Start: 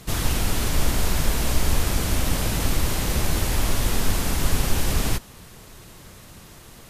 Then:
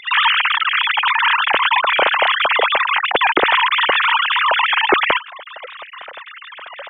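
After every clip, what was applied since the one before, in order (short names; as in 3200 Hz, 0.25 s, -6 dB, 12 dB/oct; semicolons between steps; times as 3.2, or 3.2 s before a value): sine-wave speech; gain +3.5 dB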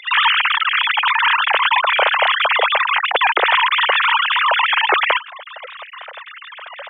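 HPF 470 Hz 24 dB/oct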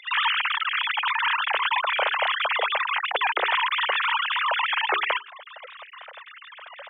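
notches 60/120/180/240/300/360/420 Hz; gain -8.5 dB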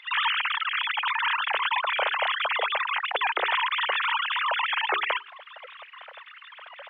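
band noise 960–3100 Hz -60 dBFS; gain -2 dB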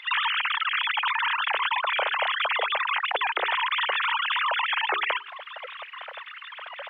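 compressor, threshold -28 dBFS, peak gain reduction 7.5 dB; gain +5.5 dB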